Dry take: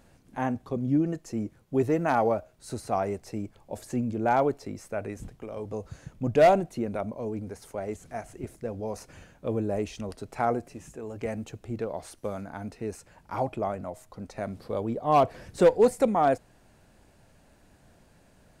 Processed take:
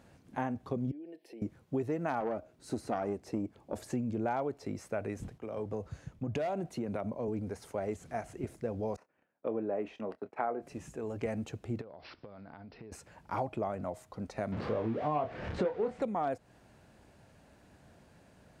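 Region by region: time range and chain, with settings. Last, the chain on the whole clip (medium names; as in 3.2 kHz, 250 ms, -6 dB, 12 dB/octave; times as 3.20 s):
0.91–1.42 s: high-pass 320 Hz 24 dB/octave + compression 4:1, threshold -45 dBFS + static phaser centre 3 kHz, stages 4
2.20–3.76 s: peaking EQ 290 Hz +9 dB 1 oct + valve stage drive 18 dB, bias 0.6
5.38–7.28 s: compression, threshold -29 dBFS + three bands expanded up and down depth 40%
8.96–10.62 s: gate -45 dBFS, range -23 dB + three-band isolator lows -22 dB, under 220 Hz, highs -22 dB, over 2.6 kHz + doubling 27 ms -13 dB
11.81–12.92 s: compression 20:1, threshold -44 dBFS + careless resampling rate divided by 4×, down none, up filtered
14.52–16.02 s: jump at every zero crossing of -33 dBFS + low-pass 2.6 kHz + doubling 27 ms -6 dB
whole clip: high-pass 59 Hz; treble shelf 6.5 kHz -7.5 dB; compression 6:1, threshold -30 dBFS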